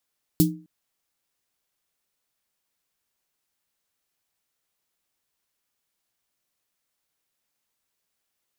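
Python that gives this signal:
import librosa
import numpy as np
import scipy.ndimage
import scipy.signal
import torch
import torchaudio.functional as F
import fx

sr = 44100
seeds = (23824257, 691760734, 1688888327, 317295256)

y = fx.drum_snare(sr, seeds[0], length_s=0.26, hz=170.0, second_hz=310.0, noise_db=-6, noise_from_hz=3800.0, decay_s=0.37, noise_decay_s=0.15)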